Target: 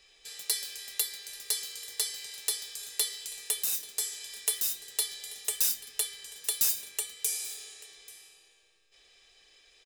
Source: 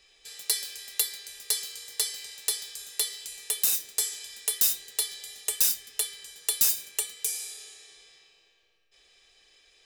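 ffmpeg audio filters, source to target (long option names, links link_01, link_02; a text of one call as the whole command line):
ffmpeg -i in.wav -af "bandreject=frequency=61.63:width_type=h:width=4,bandreject=frequency=123.26:width_type=h:width=4,bandreject=frequency=184.89:width_type=h:width=4,bandreject=frequency=246.52:width_type=h:width=4,bandreject=frequency=308.15:width_type=h:width=4,bandreject=frequency=369.78:width_type=h:width=4,alimiter=limit=-12.5dB:level=0:latency=1:release=351,aecho=1:1:836:0.1" out.wav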